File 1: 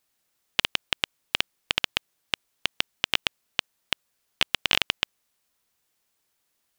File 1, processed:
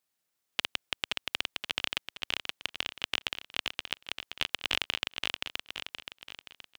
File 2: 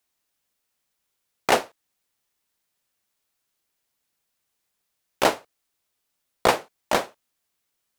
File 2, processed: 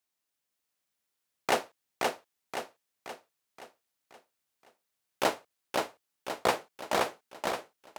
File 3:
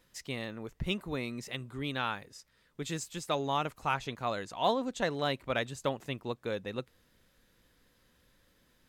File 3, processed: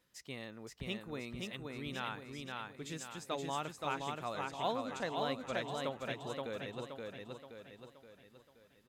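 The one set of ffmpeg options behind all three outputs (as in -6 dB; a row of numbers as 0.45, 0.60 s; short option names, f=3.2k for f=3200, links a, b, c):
-filter_complex "[0:a]highpass=f=82:p=1,asplit=2[a][b];[b]aecho=0:1:524|1048|1572|2096|2620|3144:0.708|0.333|0.156|0.0735|0.0345|0.0162[c];[a][c]amix=inputs=2:normalize=0,volume=-7.5dB"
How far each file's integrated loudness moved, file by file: -6.0, -9.0, -6.0 LU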